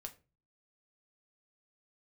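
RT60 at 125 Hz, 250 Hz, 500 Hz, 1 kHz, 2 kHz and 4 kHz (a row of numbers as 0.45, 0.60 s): 0.60, 0.50, 0.35, 0.25, 0.25, 0.20 s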